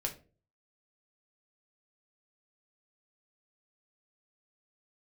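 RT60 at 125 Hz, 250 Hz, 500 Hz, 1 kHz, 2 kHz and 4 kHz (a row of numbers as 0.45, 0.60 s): 0.60, 0.50, 0.45, 0.30, 0.30, 0.25 s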